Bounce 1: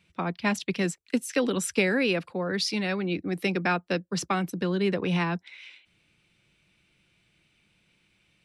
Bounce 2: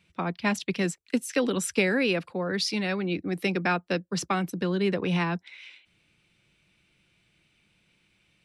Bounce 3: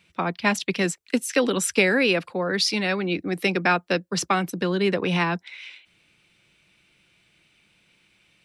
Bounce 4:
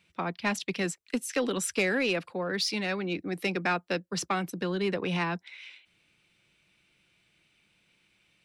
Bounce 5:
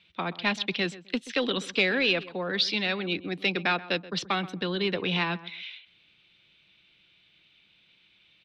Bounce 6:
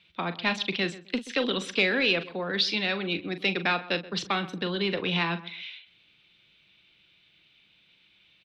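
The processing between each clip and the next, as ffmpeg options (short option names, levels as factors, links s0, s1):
-af anull
-af "lowshelf=f=250:g=-7,volume=2"
-af "asoftclip=type=tanh:threshold=0.251,volume=0.501"
-filter_complex "[0:a]lowpass=f=3600:t=q:w=3.8,asplit=2[s0][s1];[s1]adelay=129,lowpass=f=1700:p=1,volume=0.158,asplit=2[s2][s3];[s3]adelay=129,lowpass=f=1700:p=1,volume=0.24[s4];[s0][s2][s4]amix=inputs=3:normalize=0"
-filter_complex "[0:a]asplit=2[s0][s1];[s1]adelay=41,volume=0.266[s2];[s0][s2]amix=inputs=2:normalize=0"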